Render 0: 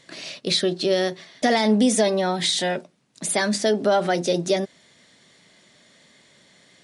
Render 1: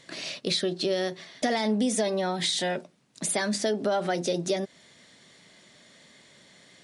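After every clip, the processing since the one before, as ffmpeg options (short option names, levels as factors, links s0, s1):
-af "acompressor=threshold=0.0398:ratio=2"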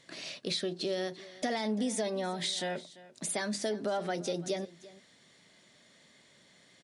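-af "aecho=1:1:342:0.112,volume=0.473"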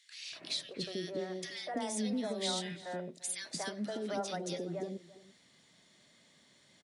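-filter_complex "[0:a]acrossover=split=500|1800[s0][s1][s2];[s1]adelay=240[s3];[s0]adelay=320[s4];[s4][s3][s2]amix=inputs=3:normalize=0,volume=0.794"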